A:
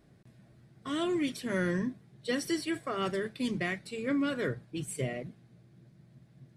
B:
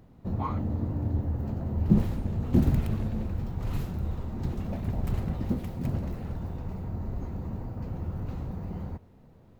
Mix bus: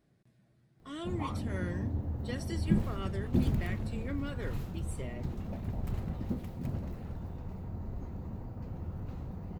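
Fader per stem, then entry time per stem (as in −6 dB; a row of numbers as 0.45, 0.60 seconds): −9.0, −6.0 decibels; 0.00, 0.80 seconds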